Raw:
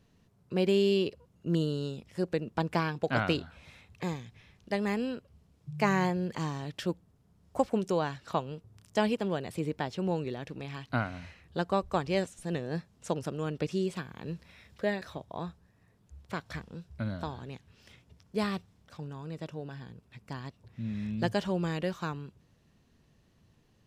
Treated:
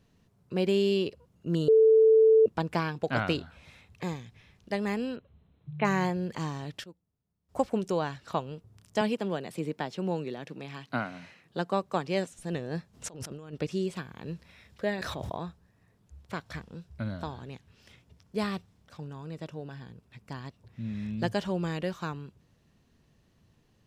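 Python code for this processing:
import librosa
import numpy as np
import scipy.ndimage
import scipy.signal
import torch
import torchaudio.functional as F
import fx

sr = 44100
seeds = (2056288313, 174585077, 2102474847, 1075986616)

y = fx.brickwall_lowpass(x, sr, high_hz=4200.0, at=(5.16, 5.85))
y = fx.highpass(y, sr, hz=140.0, slope=24, at=(9.01, 12.31))
y = fx.over_compress(y, sr, threshold_db=-43.0, ratio=-1.0, at=(12.93, 13.52), fade=0.02)
y = fx.env_flatten(y, sr, amount_pct=100, at=(14.98, 15.38))
y = fx.edit(y, sr, fx.bleep(start_s=1.68, length_s=0.78, hz=442.0, db=-15.5),
    fx.fade_down_up(start_s=6.71, length_s=0.91, db=-18.0, fade_s=0.13, curve='log'), tone=tone)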